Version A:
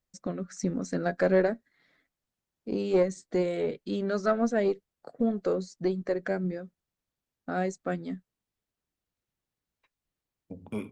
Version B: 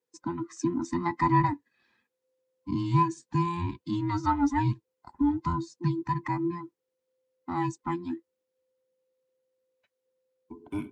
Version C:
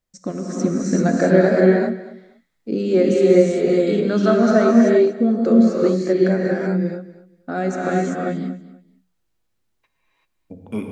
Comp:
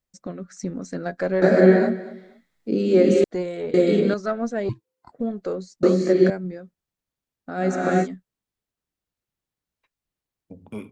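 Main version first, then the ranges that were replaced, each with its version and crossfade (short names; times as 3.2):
A
1.42–3.24 from C
3.74–4.14 from C
4.69–5.12 from B
5.83–6.3 from C
7.6–8.05 from C, crossfade 0.06 s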